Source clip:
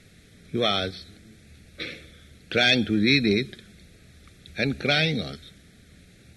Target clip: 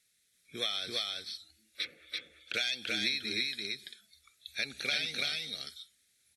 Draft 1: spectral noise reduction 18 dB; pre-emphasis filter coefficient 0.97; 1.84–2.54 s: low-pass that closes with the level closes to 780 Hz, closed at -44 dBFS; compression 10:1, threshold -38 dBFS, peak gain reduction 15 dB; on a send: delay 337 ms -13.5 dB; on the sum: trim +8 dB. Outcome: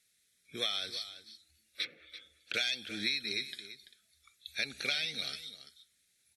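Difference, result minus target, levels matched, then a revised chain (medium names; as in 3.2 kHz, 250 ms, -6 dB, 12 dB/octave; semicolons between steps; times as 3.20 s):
echo-to-direct -11.5 dB
spectral noise reduction 18 dB; pre-emphasis filter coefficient 0.97; 1.84–2.54 s: low-pass that closes with the level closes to 780 Hz, closed at -44 dBFS; compression 10:1, threshold -38 dBFS, peak gain reduction 15 dB; on a send: delay 337 ms -2 dB; on the sum: trim +8 dB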